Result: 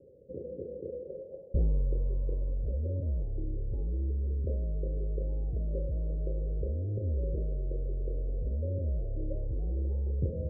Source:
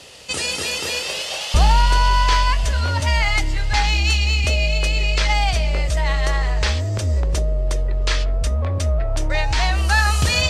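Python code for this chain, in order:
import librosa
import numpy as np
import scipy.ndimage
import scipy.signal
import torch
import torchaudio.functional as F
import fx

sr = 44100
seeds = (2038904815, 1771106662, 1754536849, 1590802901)

y = scipy.signal.sosfilt(scipy.signal.cheby1(6, 3, 550.0, 'lowpass', fs=sr, output='sos'), x)
y = fx.low_shelf(y, sr, hz=360.0, db=-10.5)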